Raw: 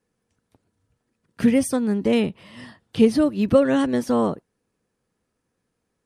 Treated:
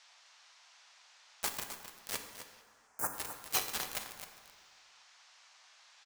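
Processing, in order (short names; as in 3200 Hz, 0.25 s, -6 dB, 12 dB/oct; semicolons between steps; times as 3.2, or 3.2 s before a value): spectrum mirrored in octaves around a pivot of 1800 Hz; spectral gate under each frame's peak -25 dB weak; HPF 370 Hz 24 dB/oct; requantised 6-bit, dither none; band noise 700–6300 Hz -72 dBFS; 2.61–3.13 Butterworth band-stop 3500 Hz, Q 0.6; on a send: echo 0.26 s -11.5 dB; on the sum: plate-style reverb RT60 1.7 s, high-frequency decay 0.55×, DRR 5.5 dB; gain +9 dB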